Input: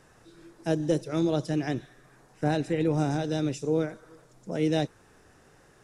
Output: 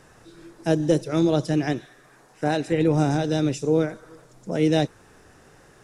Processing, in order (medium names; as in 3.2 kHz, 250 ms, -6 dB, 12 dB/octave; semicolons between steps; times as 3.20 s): 1.73–2.72 s: bass shelf 200 Hz -10.5 dB; trim +5.5 dB